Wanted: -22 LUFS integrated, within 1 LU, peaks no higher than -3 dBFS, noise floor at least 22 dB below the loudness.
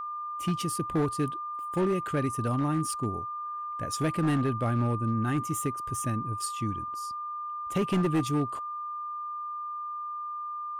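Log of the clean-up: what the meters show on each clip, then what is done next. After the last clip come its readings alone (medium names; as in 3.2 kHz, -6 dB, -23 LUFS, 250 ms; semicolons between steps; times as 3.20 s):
clipped samples 1.3%; clipping level -21.0 dBFS; steady tone 1.2 kHz; tone level -33 dBFS; loudness -30.5 LUFS; peak level -21.0 dBFS; loudness target -22.0 LUFS
-> clip repair -21 dBFS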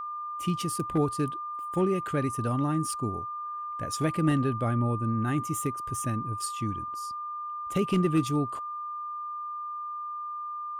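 clipped samples 0.0%; steady tone 1.2 kHz; tone level -33 dBFS
-> band-stop 1.2 kHz, Q 30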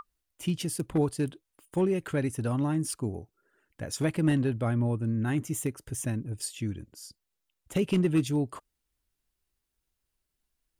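steady tone not found; loudness -30.0 LUFS; peak level -13.5 dBFS; loudness target -22.0 LUFS
-> trim +8 dB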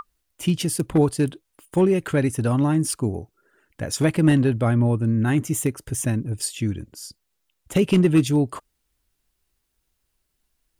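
loudness -22.0 LUFS; peak level -5.5 dBFS; noise floor -75 dBFS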